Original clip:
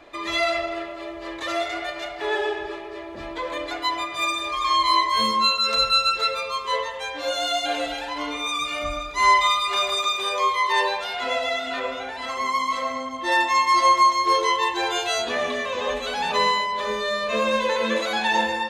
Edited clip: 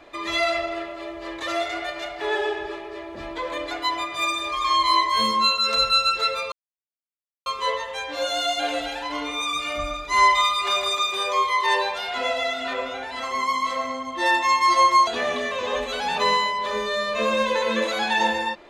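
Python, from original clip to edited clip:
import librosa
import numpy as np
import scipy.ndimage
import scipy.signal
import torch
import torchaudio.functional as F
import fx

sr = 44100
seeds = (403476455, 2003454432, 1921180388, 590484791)

y = fx.edit(x, sr, fx.insert_silence(at_s=6.52, length_s=0.94),
    fx.cut(start_s=14.13, length_s=1.08), tone=tone)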